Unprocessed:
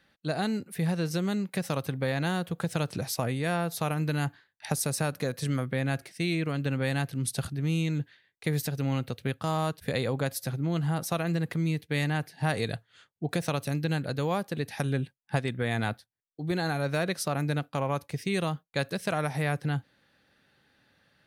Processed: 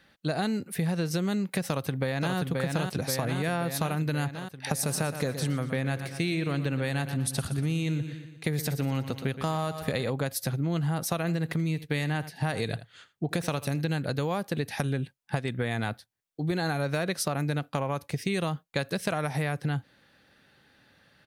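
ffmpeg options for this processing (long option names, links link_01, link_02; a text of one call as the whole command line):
ffmpeg -i in.wav -filter_complex "[0:a]asplit=2[link_01][link_02];[link_02]afade=type=in:start_time=1.68:duration=0.01,afade=type=out:start_time=2.36:duration=0.01,aecho=0:1:530|1060|1590|2120|2650|3180|3710|4240|4770|5300:0.707946|0.460165|0.299107|0.19442|0.126373|0.0821423|0.0533925|0.0347051|0.0225583|0.0146629[link_03];[link_01][link_03]amix=inputs=2:normalize=0,asettb=1/sr,asplit=3[link_04][link_05][link_06];[link_04]atrim=end=4.674[link_07];[link_05]atrim=start=4.67:end=10.1,asetpts=PTS-STARTPTS,afade=type=in:duration=0.004:curve=qsin,afade=type=out:start_time=5.426:duration=0.004:curve=qsin,aecho=1:1:119|238|357|476|595:0.237|0.116|0.0569|0.0279|0.0137,atrim=end_sample=239463[link_08];[link_06]atrim=start=10.096[link_09];[link_07][link_08]acrossfade=duration=0.004:curve1=hsin:curve2=qsin[link_10];[link_10][link_09]acrossfade=duration=0.004:curve1=qsin:curve2=hsin,asplit=3[link_11][link_12][link_13];[link_11]afade=type=out:start_time=11.23:duration=0.02[link_14];[link_12]aecho=1:1:81:0.133,afade=type=in:start_time=11.23:duration=0.02,afade=type=out:start_time=13.81:duration=0.02[link_15];[link_13]afade=type=in:start_time=13.81:duration=0.02[link_16];[link_14][link_15][link_16]amix=inputs=3:normalize=0,acompressor=threshold=-30dB:ratio=6,volume=5dB" out.wav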